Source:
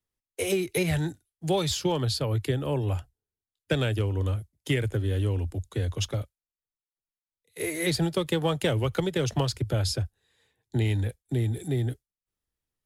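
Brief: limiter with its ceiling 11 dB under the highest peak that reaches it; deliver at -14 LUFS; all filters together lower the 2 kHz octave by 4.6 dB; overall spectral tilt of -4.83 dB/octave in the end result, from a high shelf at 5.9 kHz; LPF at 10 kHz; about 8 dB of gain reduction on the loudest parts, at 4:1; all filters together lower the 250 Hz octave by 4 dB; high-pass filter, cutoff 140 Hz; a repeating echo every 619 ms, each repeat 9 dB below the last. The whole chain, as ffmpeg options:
-af "highpass=140,lowpass=10000,equalizer=f=250:t=o:g=-5.5,equalizer=f=2000:t=o:g=-6.5,highshelf=f=5900:g=7.5,acompressor=threshold=0.0224:ratio=4,alimiter=level_in=2.37:limit=0.0631:level=0:latency=1,volume=0.422,aecho=1:1:619|1238|1857|2476:0.355|0.124|0.0435|0.0152,volume=23.7"

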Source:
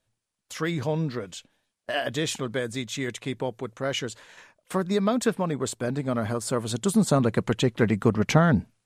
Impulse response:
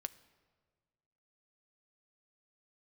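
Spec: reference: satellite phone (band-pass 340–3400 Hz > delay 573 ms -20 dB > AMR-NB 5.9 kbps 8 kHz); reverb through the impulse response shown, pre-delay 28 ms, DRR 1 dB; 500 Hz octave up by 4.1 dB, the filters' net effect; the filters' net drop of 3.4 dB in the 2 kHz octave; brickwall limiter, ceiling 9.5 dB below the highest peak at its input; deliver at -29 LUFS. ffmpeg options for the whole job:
-filter_complex "[0:a]equalizer=f=500:t=o:g=6.5,equalizer=f=2000:t=o:g=-4.5,alimiter=limit=0.178:level=0:latency=1,asplit=2[s0][s1];[1:a]atrim=start_sample=2205,adelay=28[s2];[s1][s2]afir=irnorm=-1:irlink=0,volume=1.19[s3];[s0][s3]amix=inputs=2:normalize=0,highpass=340,lowpass=3400,aecho=1:1:573:0.1,volume=0.944" -ar 8000 -c:a libopencore_amrnb -b:a 5900

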